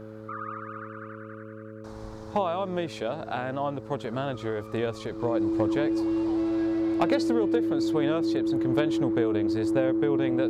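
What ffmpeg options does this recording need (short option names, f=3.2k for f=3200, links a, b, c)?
-af "bandreject=f=108.6:t=h:w=4,bandreject=f=217.2:t=h:w=4,bandreject=f=325.8:t=h:w=4,bandreject=f=434.4:t=h:w=4,bandreject=f=543:t=h:w=4,bandreject=f=330:w=30"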